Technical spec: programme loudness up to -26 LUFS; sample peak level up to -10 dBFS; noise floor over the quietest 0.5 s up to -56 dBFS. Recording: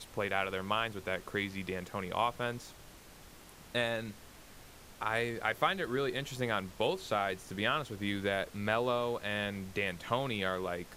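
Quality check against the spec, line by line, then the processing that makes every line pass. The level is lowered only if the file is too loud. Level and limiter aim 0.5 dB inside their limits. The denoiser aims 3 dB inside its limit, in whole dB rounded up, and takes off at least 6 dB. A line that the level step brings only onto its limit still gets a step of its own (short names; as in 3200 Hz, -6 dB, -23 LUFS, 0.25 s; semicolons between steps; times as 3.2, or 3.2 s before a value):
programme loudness -34.5 LUFS: OK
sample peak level -14.5 dBFS: OK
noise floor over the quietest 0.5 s -54 dBFS: fail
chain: denoiser 6 dB, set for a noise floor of -54 dBFS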